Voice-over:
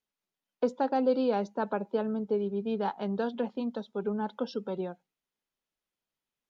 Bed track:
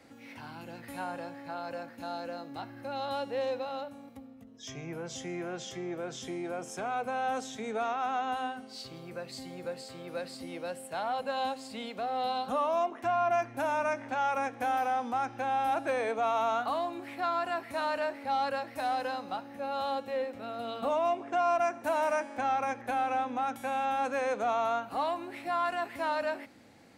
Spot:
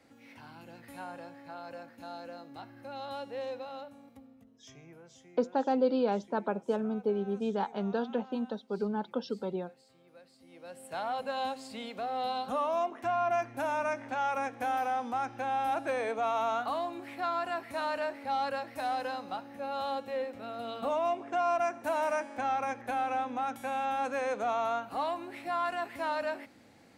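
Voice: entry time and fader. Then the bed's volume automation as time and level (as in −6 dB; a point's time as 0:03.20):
4.75 s, −1.0 dB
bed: 0:04.35 −5.5 dB
0:05.33 −19 dB
0:10.37 −19 dB
0:10.94 −1.5 dB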